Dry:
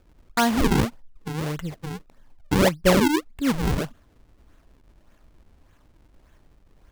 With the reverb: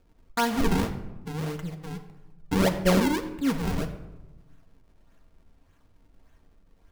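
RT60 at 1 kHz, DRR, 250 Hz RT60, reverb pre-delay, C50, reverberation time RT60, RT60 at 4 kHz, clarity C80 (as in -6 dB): 1.0 s, 4.5 dB, 1.4 s, 4 ms, 10.5 dB, 1.1 s, 0.60 s, 12.0 dB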